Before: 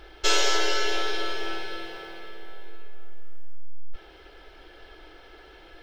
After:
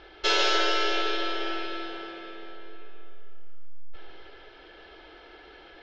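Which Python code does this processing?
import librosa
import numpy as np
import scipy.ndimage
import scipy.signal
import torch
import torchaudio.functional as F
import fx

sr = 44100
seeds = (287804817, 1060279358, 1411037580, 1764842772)

p1 = scipy.signal.sosfilt(scipy.signal.butter(4, 5000.0, 'lowpass', fs=sr, output='sos'), x)
p2 = fx.low_shelf(p1, sr, hz=90.0, db=-10.5)
y = p2 + fx.echo_feedback(p2, sr, ms=143, feedback_pct=46, wet_db=-7.0, dry=0)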